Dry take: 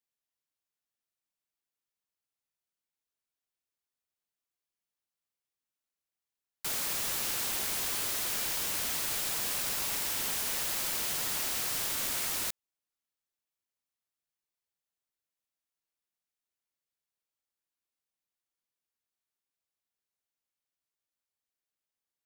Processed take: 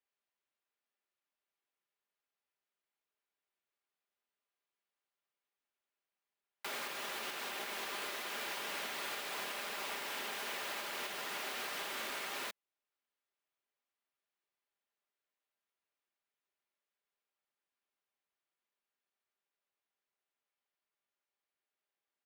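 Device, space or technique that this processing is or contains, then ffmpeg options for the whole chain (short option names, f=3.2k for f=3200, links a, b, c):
DJ mixer with the lows and highs turned down: -filter_complex "[0:a]acrossover=split=250 3500:gain=0.0708 1 0.158[a][b][c];[a][b][c]amix=inputs=3:normalize=0,alimiter=level_in=10.5dB:limit=-24dB:level=0:latency=1:release=493,volume=-10.5dB,aecho=1:1:5:0.35,volume=3.5dB"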